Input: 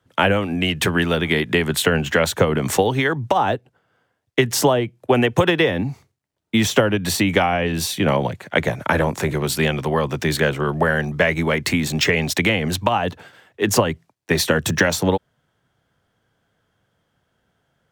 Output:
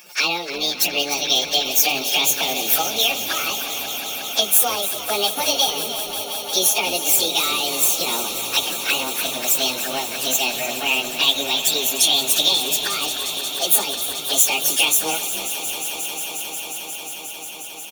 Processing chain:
phase-vocoder pitch shift without resampling +9 semitones
high-pass filter 320 Hz 6 dB per octave
notch comb filter 1,000 Hz
in parallel at −11.5 dB: hard clipping −18.5 dBFS, distortion −14 dB
on the sum: flanger swept by the level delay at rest 5.8 ms, full sweep at −21 dBFS
spectral tilt +4.5 dB per octave
on a send: echo that builds up and dies away 179 ms, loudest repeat 5, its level −15 dB
on the sum: upward compression, threshold −29 dBFS
echo with shifted repeats 299 ms, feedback 30%, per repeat −120 Hz, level −12 dB

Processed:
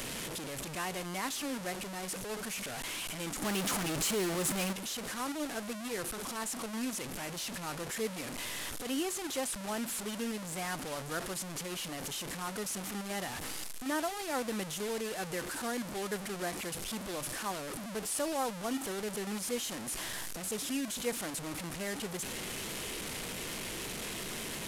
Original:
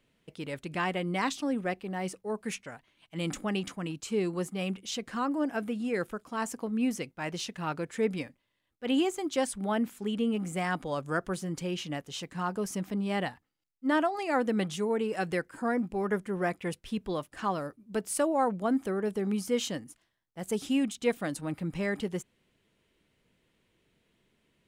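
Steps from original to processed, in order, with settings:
linear delta modulator 64 kbit/s, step −27 dBFS
parametric band 83 Hz −5 dB 2.3 octaves
0:03.42–0:04.73: leveller curve on the samples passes 2
high-shelf EQ 9,500 Hz +10.5 dB
level −7 dB

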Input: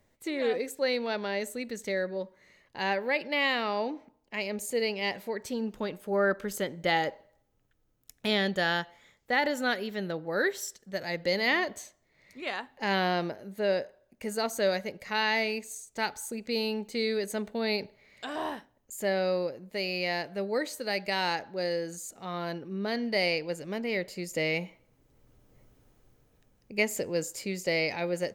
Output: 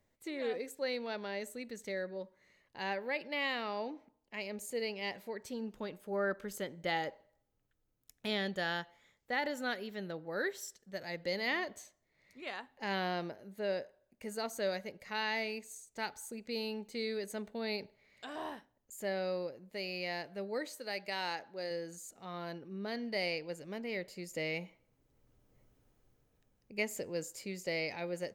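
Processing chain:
0:20.72–0:21.71: low-shelf EQ 180 Hz −9.5 dB
level −8 dB

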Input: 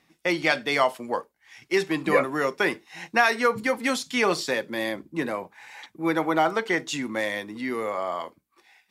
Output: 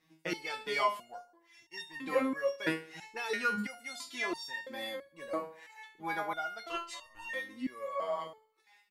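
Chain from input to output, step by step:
repeating echo 71 ms, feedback 51%, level −19 dB
0:06.68–0:07.29: ring modulation 860 Hz
step-sequenced resonator 3 Hz 160–920 Hz
level +5 dB

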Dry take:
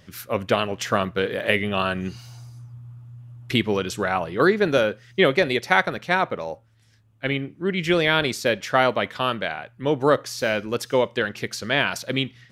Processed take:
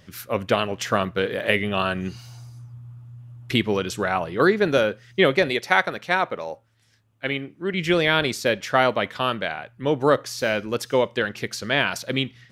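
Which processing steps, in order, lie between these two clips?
0:05.50–0:07.74: low-shelf EQ 200 Hz −8.5 dB

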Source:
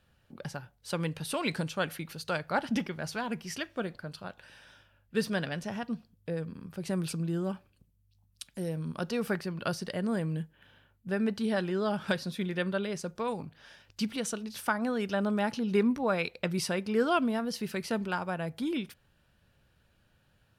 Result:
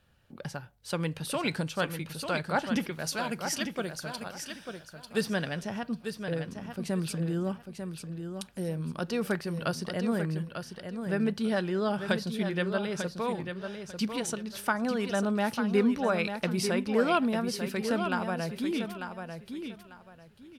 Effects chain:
0:02.92–0:05.21: bass and treble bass −3 dB, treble +9 dB
repeating echo 895 ms, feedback 23%, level −7.5 dB
level +1 dB

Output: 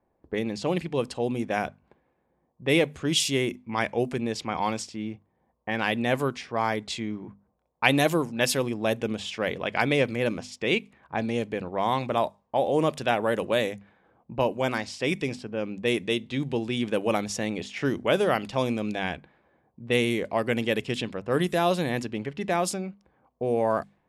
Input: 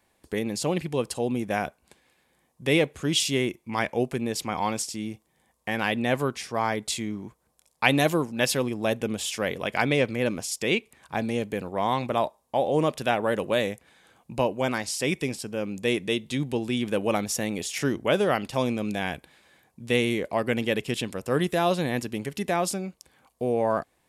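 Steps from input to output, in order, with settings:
low-pass that shuts in the quiet parts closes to 800 Hz, open at −21 dBFS
mains-hum notches 50/100/150/200/250 Hz

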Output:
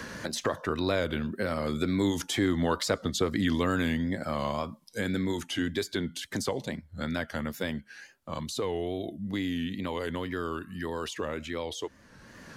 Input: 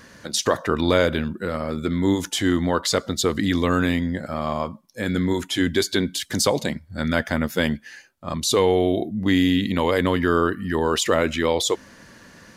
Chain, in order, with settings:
source passing by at 0:02.77, 7 m/s, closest 8 metres
tape wow and flutter 97 cents
multiband upward and downward compressor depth 70%
level −2 dB

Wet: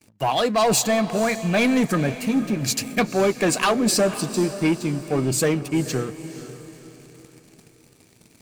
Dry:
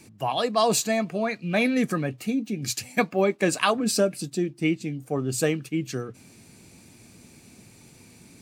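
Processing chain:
noise gate with hold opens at −44 dBFS
leveller curve on the samples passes 3
feedback delay with all-pass diffusion 493 ms, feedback 42%, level −13 dB
level −5 dB

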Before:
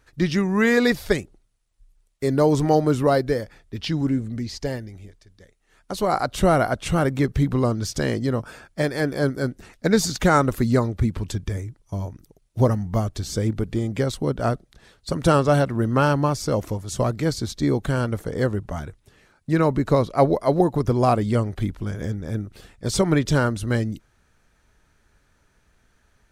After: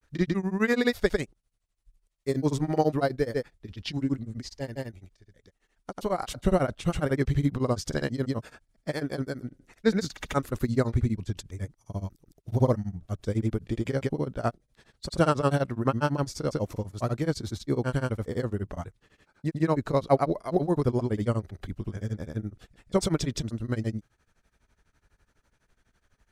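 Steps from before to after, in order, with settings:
granular cloud 100 ms, grains 12 per second, pitch spread up and down by 0 semitones
level −3 dB

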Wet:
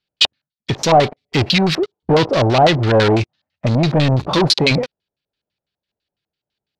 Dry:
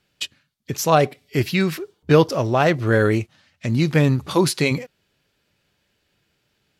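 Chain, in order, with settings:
shaped tremolo saw down 1.7 Hz, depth 35%
leveller curve on the samples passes 5
high-shelf EQ 4,900 Hz +7.5 dB
auto-filter low-pass square 6 Hz 750–4,100 Hz
level −6.5 dB

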